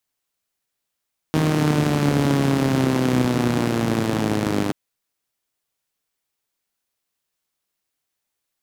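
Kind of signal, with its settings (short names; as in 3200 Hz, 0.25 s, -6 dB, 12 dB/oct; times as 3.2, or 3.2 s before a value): four-cylinder engine model, changing speed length 3.38 s, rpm 4700, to 3000, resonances 160/250 Hz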